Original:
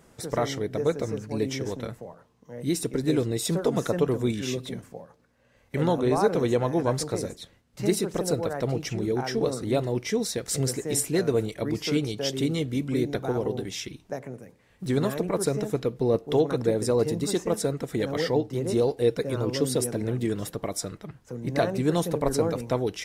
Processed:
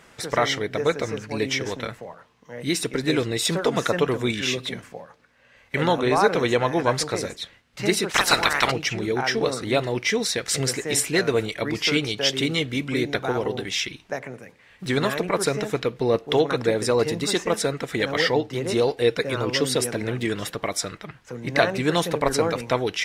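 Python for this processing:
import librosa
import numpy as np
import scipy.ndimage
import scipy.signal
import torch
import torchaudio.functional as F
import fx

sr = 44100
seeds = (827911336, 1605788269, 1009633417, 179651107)

y = fx.spec_clip(x, sr, under_db=26, at=(8.09, 8.7), fade=0.02)
y = fx.peak_eq(y, sr, hz=2300.0, db=14.0, octaves=2.9)
y = y * 10.0 ** (-1.0 / 20.0)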